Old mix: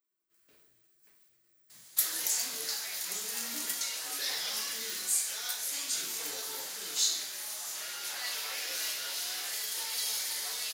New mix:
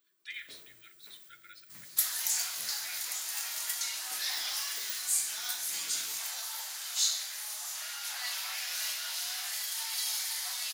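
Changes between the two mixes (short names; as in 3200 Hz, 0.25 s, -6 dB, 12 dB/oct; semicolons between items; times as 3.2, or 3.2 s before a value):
speech: unmuted; first sound +9.5 dB; second sound: add steep high-pass 660 Hz 48 dB/oct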